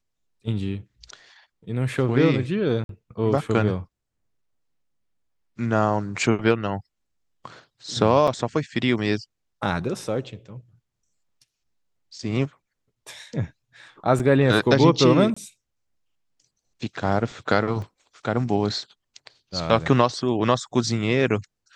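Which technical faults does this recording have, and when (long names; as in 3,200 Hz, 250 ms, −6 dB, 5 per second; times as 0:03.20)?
0:02.84–0:02.89: drop-out 52 ms
0:08.27–0:08.28: drop-out 5.9 ms
0:14.19–0:14.20: drop-out 5.9 ms
0:15.34–0:15.37: drop-out 25 ms
0:17.82: drop-out 2.1 ms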